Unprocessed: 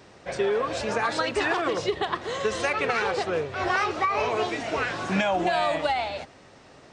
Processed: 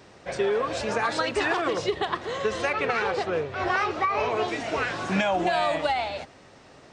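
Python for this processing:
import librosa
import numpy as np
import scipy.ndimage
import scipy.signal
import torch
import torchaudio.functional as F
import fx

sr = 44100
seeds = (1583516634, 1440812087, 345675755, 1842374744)

y = fx.high_shelf(x, sr, hz=6800.0, db=-10.0, at=(2.25, 4.48))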